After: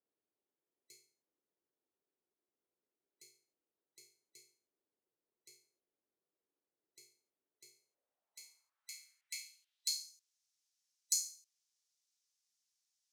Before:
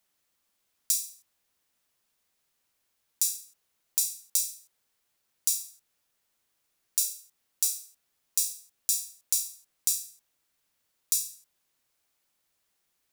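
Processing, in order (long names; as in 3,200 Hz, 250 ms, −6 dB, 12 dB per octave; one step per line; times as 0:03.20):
frequency inversion band by band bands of 2,000 Hz
band-pass filter sweep 370 Hz → 5,800 Hz, 0:07.70–0:10.23
level −1 dB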